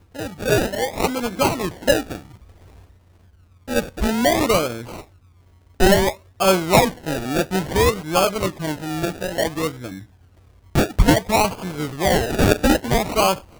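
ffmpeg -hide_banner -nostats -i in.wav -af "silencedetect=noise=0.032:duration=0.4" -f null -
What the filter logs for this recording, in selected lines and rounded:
silence_start: 2.18
silence_end: 3.68 | silence_duration: 1.50
silence_start: 5.00
silence_end: 5.80 | silence_duration: 0.80
silence_start: 9.99
silence_end: 10.75 | silence_duration: 0.76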